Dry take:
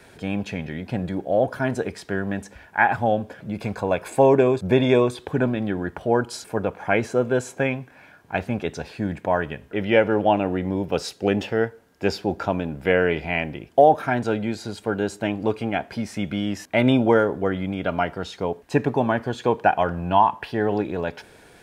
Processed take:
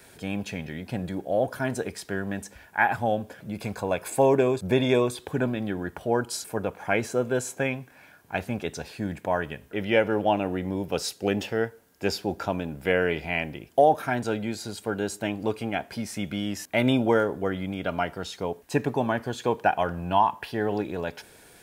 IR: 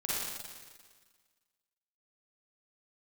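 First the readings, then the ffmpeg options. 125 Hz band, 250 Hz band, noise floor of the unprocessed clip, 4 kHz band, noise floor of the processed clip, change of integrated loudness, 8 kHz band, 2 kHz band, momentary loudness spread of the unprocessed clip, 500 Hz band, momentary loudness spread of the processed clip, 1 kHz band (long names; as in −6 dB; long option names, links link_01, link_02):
−4.5 dB, −4.5 dB, −51 dBFS, −1.0 dB, −53 dBFS, −4.0 dB, +3.5 dB, −3.0 dB, 11 LU, −4.5 dB, 11 LU, −4.0 dB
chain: -af "aemphasis=mode=production:type=50kf,volume=-4.5dB"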